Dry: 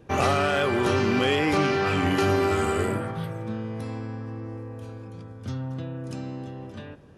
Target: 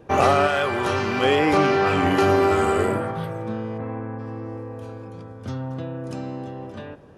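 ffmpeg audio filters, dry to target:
ffmpeg -i in.wav -filter_complex "[0:a]asettb=1/sr,asplit=3[link_01][link_02][link_03];[link_01]atrim=end=0.474[link_04];[link_02]atrim=start=0.47:end=1.23,asetpts=PTS-STARTPTS,afade=type=in:duration=0.004:curve=qsin,afade=type=out:start_time=0.756:duration=0.004:curve=qsin,equalizer=frequency=310:width=0.49:gain=-7[link_05];[link_03]atrim=start=1.226[link_06];[link_04][link_05]acrossfade=duration=0.004:curve1=hsin:curve2=qsin[link_07];[link_07][link_06]acrossfade=duration=0.004:curve1=qsin:curve2=hsin,asplit=3[link_08][link_09][link_10];[link_08]afade=type=out:start_time=3.77:duration=0.02[link_11];[link_09]lowpass=frequency=2200:width=0.5412,lowpass=frequency=2200:width=1.3066,afade=type=in:start_time=3.77:duration=0.02,afade=type=out:start_time=4.18:duration=0.02[link_12];[link_10]afade=type=in:start_time=4.18:duration=0.02[link_13];[link_11][link_12][link_13]amix=inputs=3:normalize=0,equalizer=frequency=700:width=0.53:gain=7" out.wav

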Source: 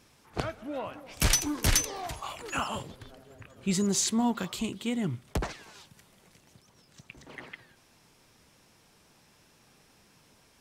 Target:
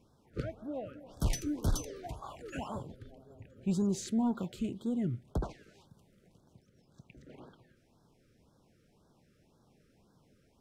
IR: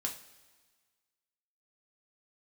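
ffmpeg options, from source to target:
-af "tiltshelf=frequency=1300:gain=7.5,asoftclip=type=tanh:threshold=-12dB,afftfilt=real='re*(1-between(b*sr/1024,830*pow(2400/830,0.5+0.5*sin(2*PI*1.9*pts/sr))/1.41,830*pow(2400/830,0.5+0.5*sin(2*PI*1.9*pts/sr))*1.41))':imag='im*(1-between(b*sr/1024,830*pow(2400/830,0.5+0.5*sin(2*PI*1.9*pts/sr))/1.41,830*pow(2400/830,0.5+0.5*sin(2*PI*1.9*pts/sr))*1.41))':win_size=1024:overlap=0.75,volume=-8.5dB"

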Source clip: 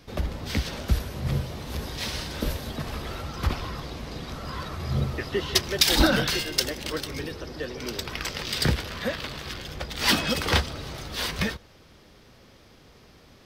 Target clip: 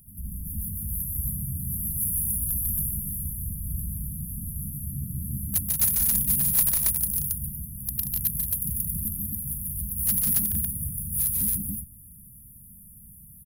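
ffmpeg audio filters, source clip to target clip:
ffmpeg -i in.wav -filter_complex "[0:a]afftfilt=real='re*(1-between(b*sr/4096,220,9600))':imag='im*(1-between(b*sr/4096,220,9600))':win_size=4096:overlap=0.75,areverse,acompressor=threshold=-33dB:ratio=6,areverse,aexciter=amount=7.7:drive=3.9:freq=2400,asplit=2[link_01][link_02];[link_02]asetrate=58866,aresample=44100,atempo=0.749154,volume=-11dB[link_03];[link_01][link_03]amix=inputs=2:normalize=0,volume=18dB,asoftclip=hard,volume=-18dB,asplit=2[link_04][link_05];[link_05]aecho=0:1:145.8|180.8|274.1:0.708|0.501|0.891[link_06];[link_04][link_06]amix=inputs=2:normalize=0" out.wav

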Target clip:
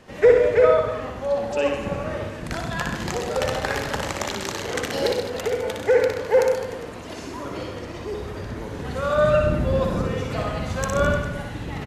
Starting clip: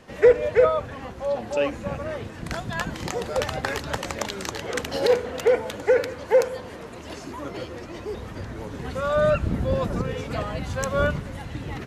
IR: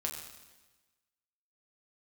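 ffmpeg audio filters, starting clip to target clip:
-filter_complex "[0:a]asplit=2[link_01][link_02];[link_02]aecho=0:1:96:0.299[link_03];[link_01][link_03]amix=inputs=2:normalize=0,asettb=1/sr,asplit=3[link_04][link_05][link_06];[link_04]atrim=end=5.064[link_07];[link_05]atrim=start=5.06:end=5.64,asetpts=PTS-STARTPTS,afade=type=in:duration=0.004:curve=qsin,afade=type=out:start_time=0.576:duration=0.004:curve=qsin,acrossover=split=260|3000[link_08][link_09][link_10];[link_09]acompressor=threshold=-26dB:ratio=6[link_11];[link_08][link_11][link_10]amix=inputs=3:normalize=0[link_12];[link_06]atrim=start=5.636[link_13];[link_07][link_12]acrossfade=duration=0.004:curve1=hsin:curve2=qsin[link_14];[link_14][link_13]acrossfade=duration=0.004:curve1=qsin:curve2=hsin,asplit=2[link_15][link_16];[link_16]aecho=0:1:60|129|208.4|299.6|404.5:0.631|0.398|0.251|0.158|0.1[link_17];[link_15][link_17]amix=inputs=2:normalize=0"

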